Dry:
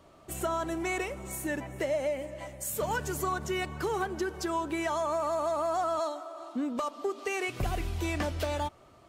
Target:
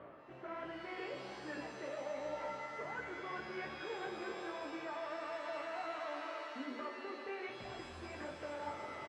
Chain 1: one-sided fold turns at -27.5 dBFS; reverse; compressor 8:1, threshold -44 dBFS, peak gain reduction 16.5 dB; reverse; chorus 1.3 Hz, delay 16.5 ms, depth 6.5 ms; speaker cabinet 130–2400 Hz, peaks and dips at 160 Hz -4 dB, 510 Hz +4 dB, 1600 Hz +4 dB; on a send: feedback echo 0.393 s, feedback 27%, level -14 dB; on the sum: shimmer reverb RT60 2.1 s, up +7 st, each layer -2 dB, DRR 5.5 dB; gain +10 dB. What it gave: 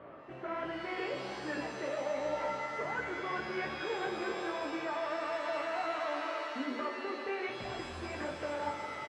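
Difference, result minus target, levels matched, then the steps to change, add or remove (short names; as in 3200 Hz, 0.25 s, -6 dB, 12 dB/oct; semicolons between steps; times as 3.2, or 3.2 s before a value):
compressor: peak gain reduction -7 dB
change: compressor 8:1, threshold -52 dBFS, peak gain reduction 23.5 dB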